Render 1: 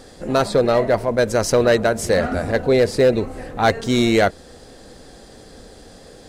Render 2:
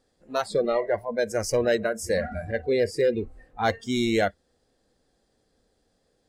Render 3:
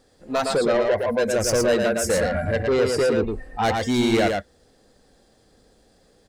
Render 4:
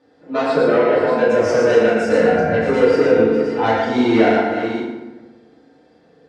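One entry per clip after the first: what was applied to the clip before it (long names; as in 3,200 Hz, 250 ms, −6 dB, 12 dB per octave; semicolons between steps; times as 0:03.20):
noise reduction from a noise print of the clip's start 20 dB; level −7 dB
in parallel at −2.5 dB: downward compressor, threshold −32 dBFS, peak gain reduction 13 dB; on the sum: soft clipping −22 dBFS, distortion −11 dB; single-tap delay 113 ms −4 dB; level +5.5 dB
delay that plays each chunk backwards 400 ms, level −8 dB; band-pass filter 170–2,900 Hz; feedback delay network reverb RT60 1.1 s, low-frequency decay 1.35×, high-frequency decay 0.65×, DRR −7 dB; level −2 dB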